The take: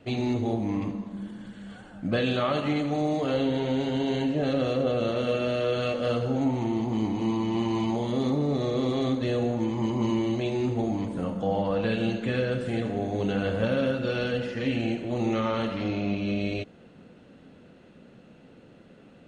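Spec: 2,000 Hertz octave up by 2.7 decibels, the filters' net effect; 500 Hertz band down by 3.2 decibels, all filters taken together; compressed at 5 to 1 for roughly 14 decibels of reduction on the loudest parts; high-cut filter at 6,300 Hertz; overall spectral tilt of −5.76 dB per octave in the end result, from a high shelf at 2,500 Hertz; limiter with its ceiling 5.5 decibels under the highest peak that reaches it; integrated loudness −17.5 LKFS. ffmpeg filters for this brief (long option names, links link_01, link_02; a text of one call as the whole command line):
ffmpeg -i in.wav -af "lowpass=6300,equalizer=frequency=500:width_type=o:gain=-4,equalizer=frequency=2000:width_type=o:gain=7,highshelf=frequency=2500:gain=-5.5,acompressor=threshold=-40dB:ratio=5,volume=26dB,alimiter=limit=-8.5dB:level=0:latency=1" out.wav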